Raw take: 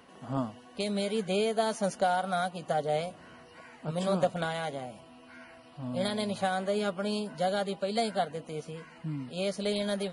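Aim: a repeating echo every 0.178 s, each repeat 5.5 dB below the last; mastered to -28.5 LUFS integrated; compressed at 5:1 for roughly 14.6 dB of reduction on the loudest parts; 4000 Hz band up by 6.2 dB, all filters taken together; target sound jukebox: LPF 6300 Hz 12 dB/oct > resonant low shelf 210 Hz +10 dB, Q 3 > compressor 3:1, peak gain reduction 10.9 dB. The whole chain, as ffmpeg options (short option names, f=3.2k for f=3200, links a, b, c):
-af "equalizer=f=4k:t=o:g=8,acompressor=threshold=-39dB:ratio=5,lowpass=6.3k,lowshelf=f=210:t=q:w=3:g=10,aecho=1:1:178|356|534|712|890|1068|1246:0.531|0.281|0.149|0.079|0.0419|0.0222|0.0118,acompressor=threshold=-38dB:ratio=3,volume=12.5dB"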